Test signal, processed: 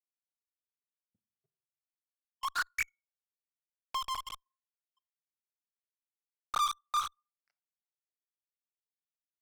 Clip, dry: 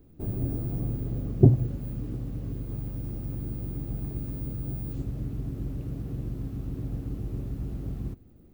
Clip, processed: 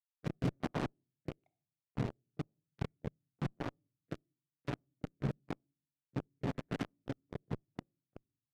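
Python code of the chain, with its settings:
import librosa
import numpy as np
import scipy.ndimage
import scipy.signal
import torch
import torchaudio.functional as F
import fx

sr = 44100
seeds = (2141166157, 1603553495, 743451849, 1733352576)

p1 = fx.spec_dropout(x, sr, seeds[0], share_pct=83)
p2 = fx.brickwall_lowpass(p1, sr, high_hz=2300.0)
p3 = fx.chorus_voices(p2, sr, voices=4, hz=0.35, base_ms=26, depth_ms=4.0, mix_pct=65)
p4 = fx.tilt_shelf(p3, sr, db=-8.5, hz=1100.0)
p5 = p4 + fx.echo_thinned(p4, sr, ms=71, feedback_pct=44, hz=240.0, wet_db=-13, dry=0)
p6 = np.sign(p5) * np.maximum(np.abs(p5) - 10.0 ** (-50.5 / 20.0), 0.0)
p7 = scipy.signal.sosfilt(scipy.signal.butter(4, 110.0, 'highpass', fs=sr, output='sos'), p6)
p8 = fx.room_shoebox(p7, sr, seeds[1], volume_m3=540.0, walls='furnished', distance_m=0.42)
p9 = fx.dynamic_eq(p8, sr, hz=1400.0, q=1.1, threshold_db=-51.0, ratio=4.0, max_db=4)
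p10 = fx.fuzz(p9, sr, gain_db=57.0, gate_db=-49.0)
p11 = p9 + F.gain(torch.from_numpy(p10), -5.5).numpy()
p12 = fx.rotary(p11, sr, hz=1.0)
p13 = fx.doppler_dist(p12, sr, depth_ms=0.51)
y = F.gain(torch.from_numpy(p13), -7.5).numpy()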